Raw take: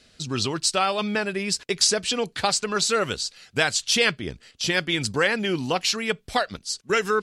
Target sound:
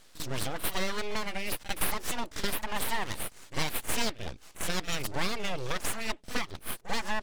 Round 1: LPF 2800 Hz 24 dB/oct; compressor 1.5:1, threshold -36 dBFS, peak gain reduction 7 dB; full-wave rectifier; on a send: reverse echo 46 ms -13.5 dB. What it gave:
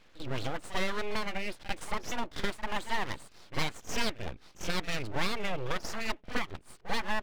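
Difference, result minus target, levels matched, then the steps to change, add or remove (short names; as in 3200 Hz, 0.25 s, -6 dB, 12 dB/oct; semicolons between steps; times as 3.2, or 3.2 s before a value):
8000 Hz band -6.5 dB
change: LPF 11000 Hz 24 dB/oct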